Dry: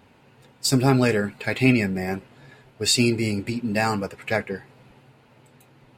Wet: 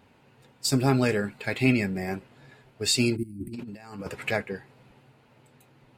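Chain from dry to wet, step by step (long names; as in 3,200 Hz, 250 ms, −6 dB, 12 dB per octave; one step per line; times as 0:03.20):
0:03.23–0:04.31: compressor whose output falls as the input rises −31 dBFS, ratio −0.5
0:03.16–0:03.54: gain on a spectral selection 370–8,100 Hz −26 dB
level −4 dB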